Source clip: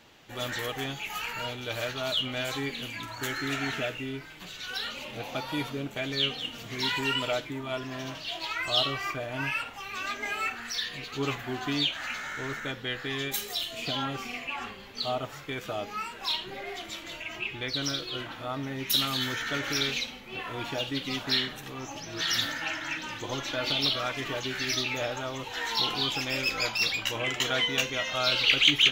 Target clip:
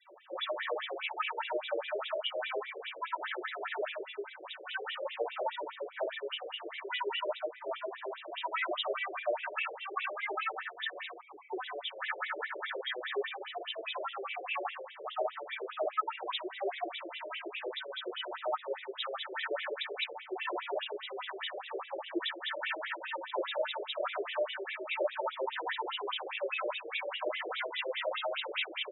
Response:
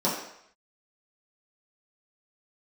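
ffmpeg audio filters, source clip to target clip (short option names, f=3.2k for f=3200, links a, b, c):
-filter_complex "[0:a]asettb=1/sr,asplit=3[a][b][c];[a]atrim=end=7.294[d];[b]atrim=start=7.29:end=8.24,asetpts=PTS-STARTPTS,afade=t=in:d=0.004:c=qsin,afade=t=out:st=0.946:d=0.004:c=qsin,adynamicequalizer=threshold=0.00447:dfrequency=2700:dqfactor=0.81:tfrequency=2700:tqfactor=0.81:attack=5:release=100:ratio=0.375:range=2.5:mode=cutabove:tftype=bell[e];[c]atrim=start=8.236[f];[d][e]acrossfade=d=0.004:c1=hsin:c2=qsin[g];[g][f]acrossfade=d=0.004:c1=qsin:c2=hsin,asettb=1/sr,asplit=3[h][i][j];[h]atrim=end=11.124[k];[i]atrim=start=11.12:end=11.53,asetpts=PTS-STARTPTS,afade=t=in:d=0.004:c=qsin,afade=t=out:st=0.406:d=0.004:c=qsin,asplit=3[l][m][n];[l]bandpass=f=300:t=q:w=8,volume=0dB[o];[m]bandpass=f=870:t=q:w=8,volume=-6dB[p];[n]bandpass=f=2.24k:t=q:w=8,volume=-9dB[q];[o][p][q]amix=inputs=3:normalize=0[r];[j]atrim=start=11.526[s];[k][r]acrossfade=d=0.004:c1=hsin:c2=qsin[t];[t][s]acrossfade=d=0.004:c1=qsin:c2=hsin,aecho=1:1:28|48:0.211|0.126,aeval=exprs='(tanh(4.47*val(0)+0.6)-tanh(0.6))/4.47':c=same[u];[1:a]atrim=start_sample=2205,afade=t=out:st=0.15:d=0.01,atrim=end_sample=7056[v];[u][v]afir=irnorm=-1:irlink=0,alimiter=limit=-13.5dB:level=0:latency=1:release=25,equalizer=f=840:t=o:w=1.2:g=-3.5,acompressor=threshold=-24dB:ratio=10,afftfilt=real='re*gte(hypot(re,im),0.00282)':imag='im*gte(hypot(re,im),0.00282)':win_size=1024:overlap=0.75,afftfilt=real='re*between(b*sr/1024,460*pow(2800/460,0.5+0.5*sin(2*PI*4.9*pts/sr))/1.41,460*pow(2800/460,0.5+0.5*sin(2*PI*4.9*pts/sr))*1.41)':imag='im*between(b*sr/1024,460*pow(2800/460,0.5+0.5*sin(2*PI*4.9*pts/sr))/1.41,460*pow(2800/460,0.5+0.5*sin(2*PI*4.9*pts/sr))*1.41)':win_size=1024:overlap=0.75"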